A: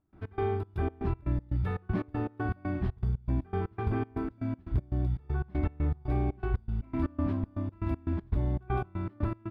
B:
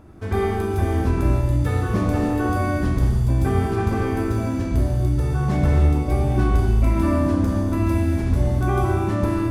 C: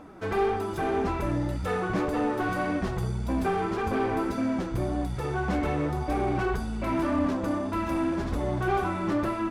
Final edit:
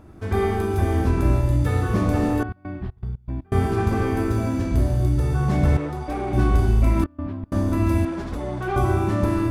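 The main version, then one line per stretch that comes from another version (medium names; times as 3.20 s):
B
2.43–3.52 s: from A
5.77–6.33 s: from C
7.04–7.52 s: from A
8.05–8.76 s: from C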